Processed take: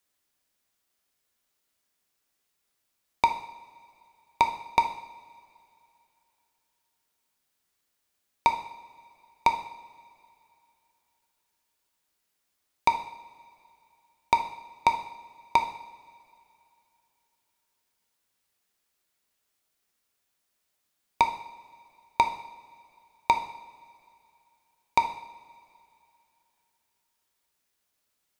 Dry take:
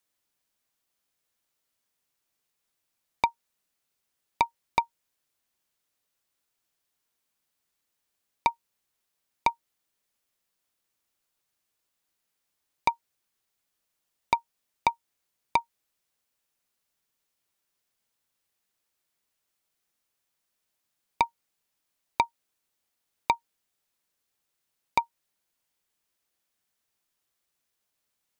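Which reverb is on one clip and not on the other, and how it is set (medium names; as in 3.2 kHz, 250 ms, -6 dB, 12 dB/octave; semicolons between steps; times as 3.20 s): two-slope reverb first 0.71 s, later 2.9 s, from -18 dB, DRR 5 dB; trim +1.5 dB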